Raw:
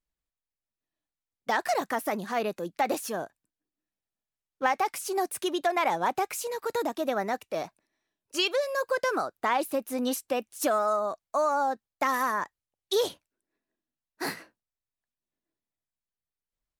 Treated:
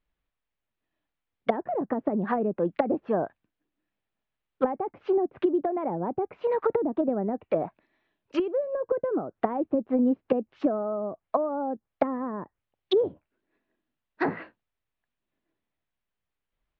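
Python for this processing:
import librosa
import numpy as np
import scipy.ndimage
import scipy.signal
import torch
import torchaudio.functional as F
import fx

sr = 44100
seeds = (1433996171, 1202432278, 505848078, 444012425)

y = fx.env_lowpass_down(x, sr, base_hz=350.0, full_db=-26.0)
y = scipy.signal.sosfilt(scipy.signal.cheby2(4, 60, 9800.0, 'lowpass', fs=sr, output='sos'), y)
y = y * 10.0 ** (8.5 / 20.0)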